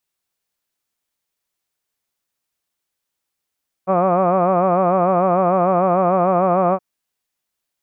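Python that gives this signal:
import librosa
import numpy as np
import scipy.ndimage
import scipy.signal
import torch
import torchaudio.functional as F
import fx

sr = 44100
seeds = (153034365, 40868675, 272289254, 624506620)

y = fx.vowel(sr, seeds[0], length_s=2.92, word='hud', hz=182.0, glide_st=0.0, vibrato_hz=6.7, vibrato_st=0.9)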